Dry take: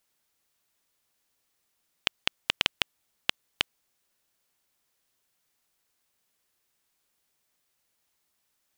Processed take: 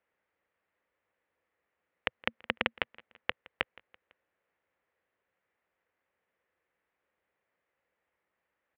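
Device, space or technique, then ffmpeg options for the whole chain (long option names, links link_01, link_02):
bass cabinet: -filter_complex "[0:a]highpass=60,equalizer=frequency=130:width_type=q:width=4:gain=-9,equalizer=frequency=240:width_type=q:width=4:gain=-4,equalizer=frequency=510:width_type=q:width=4:gain=8,equalizer=frequency=1900:width_type=q:width=4:gain=4,lowpass=frequency=2300:width=0.5412,lowpass=frequency=2300:width=1.3066,asettb=1/sr,asplit=3[link_01][link_02][link_03];[link_01]atrim=end=2.164[link_04];[link_02]atrim=start=2.16:end=2.74,asetpts=PTS-STARTPTS,afade=type=in:duration=0.004:curve=qsin,afade=type=out:start_time=0.576:duration=0.004:curve=qsin,equalizer=frequency=230:width_type=o:width=0.32:gain=12.5[link_05];[link_03]atrim=start=2.736[link_06];[link_04][link_05]acrossfade=duration=0.004:curve1=hsin:curve2=qsin[link_07];[link_07][link_06]acrossfade=duration=0.004:curve1=qsin:curve2=hsin,aecho=1:1:167|334|501:0.0668|0.0354|0.0188"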